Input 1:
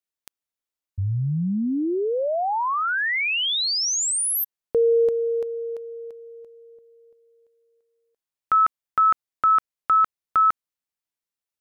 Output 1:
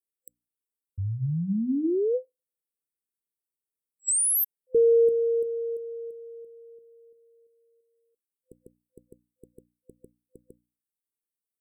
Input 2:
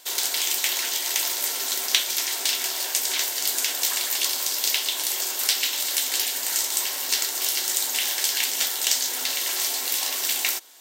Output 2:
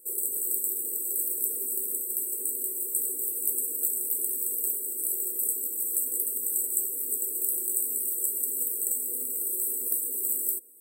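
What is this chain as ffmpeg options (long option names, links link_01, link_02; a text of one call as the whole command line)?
ffmpeg -i in.wav -af "afftfilt=real='re*(1-between(b*sr/4096,510,7700))':imag='im*(1-between(b*sr/4096,510,7700))':win_size=4096:overlap=0.75,lowshelf=frequency=150:gain=-6.5,bandreject=frequency=60:width_type=h:width=6,bandreject=frequency=120:width_type=h:width=6,bandreject=frequency=180:width_type=h:width=6,bandreject=frequency=240:width_type=h:width=6,bandreject=frequency=300:width_type=h:width=6" out.wav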